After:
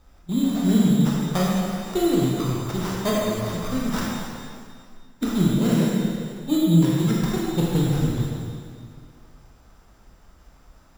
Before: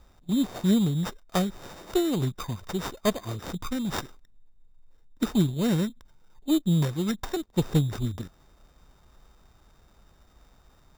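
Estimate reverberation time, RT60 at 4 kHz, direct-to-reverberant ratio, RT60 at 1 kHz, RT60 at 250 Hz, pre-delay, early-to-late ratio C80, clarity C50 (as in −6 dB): 2.2 s, 2.1 s, −5.0 dB, 2.2 s, 2.2 s, 8 ms, −1.0 dB, −2.5 dB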